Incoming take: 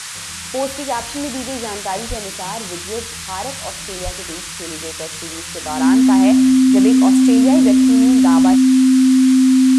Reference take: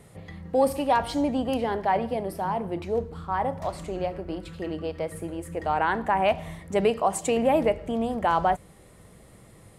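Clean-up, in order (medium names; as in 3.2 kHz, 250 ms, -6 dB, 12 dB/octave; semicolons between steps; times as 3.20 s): band-stop 260 Hz, Q 30; de-plosive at 2.08/4.04 s; noise print and reduce 21 dB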